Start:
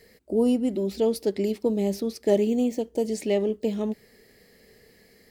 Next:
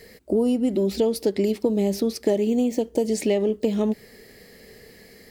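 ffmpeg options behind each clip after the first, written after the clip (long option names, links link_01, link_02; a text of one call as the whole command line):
ffmpeg -i in.wav -af "acompressor=threshold=-26dB:ratio=6,volume=8dB" out.wav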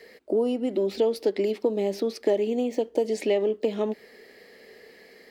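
ffmpeg -i in.wav -filter_complex "[0:a]acrossover=split=270 4400:gain=0.1 1 0.251[link_01][link_02][link_03];[link_01][link_02][link_03]amix=inputs=3:normalize=0" out.wav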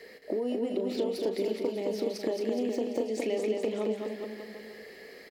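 ffmpeg -i in.wav -filter_complex "[0:a]acompressor=threshold=-30dB:ratio=4,asplit=2[link_01][link_02];[link_02]adelay=37,volume=-11dB[link_03];[link_01][link_03]amix=inputs=2:normalize=0,asplit=2[link_04][link_05];[link_05]aecho=0:1:220|418|596.2|756.6|900.9:0.631|0.398|0.251|0.158|0.1[link_06];[link_04][link_06]amix=inputs=2:normalize=0" out.wav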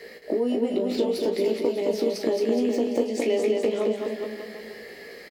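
ffmpeg -i in.wav -filter_complex "[0:a]asplit=2[link_01][link_02];[link_02]adelay=17,volume=-5dB[link_03];[link_01][link_03]amix=inputs=2:normalize=0,volume=5dB" out.wav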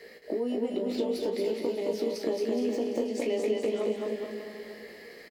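ffmpeg -i in.wav -af "aecho=1:1:239|478|717|956|1195:0.376|0.173|0.0795|0.0366|0.0168,volume=-6dB" out.wav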